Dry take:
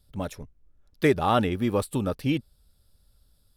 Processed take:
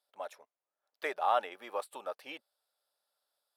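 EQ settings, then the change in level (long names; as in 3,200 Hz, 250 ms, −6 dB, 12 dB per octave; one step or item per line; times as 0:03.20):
Chebyshev high-pass filter 660 Hz, order 3
high-shelf EQ 2,500 Hz −12 dB
−2.5 dB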